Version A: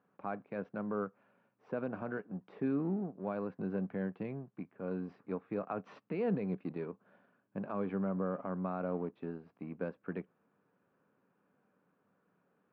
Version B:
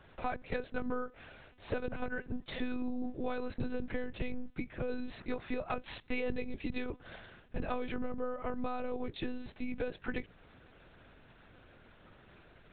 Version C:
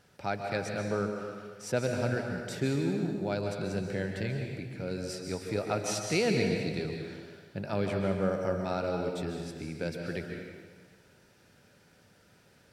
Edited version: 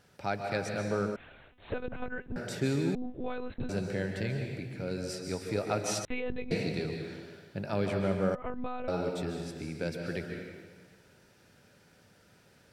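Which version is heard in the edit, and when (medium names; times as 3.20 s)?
C
1.16–2.36 s: from B
2.95–3.69 s: from B
6.05–6.51 s: from B
8.35–8.88 s: from B
not used: A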